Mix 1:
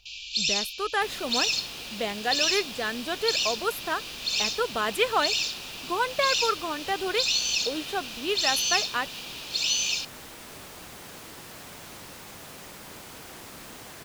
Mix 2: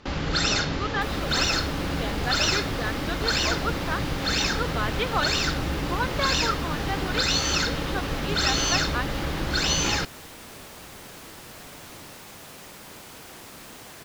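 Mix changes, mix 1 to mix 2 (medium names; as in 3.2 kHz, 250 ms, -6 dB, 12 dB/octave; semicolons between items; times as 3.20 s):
speech: add rippled Chebyshev low-pass 5.3 kHz, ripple 6 dB; first sound: remove brick-wall FIR high-pass 2.3 kHz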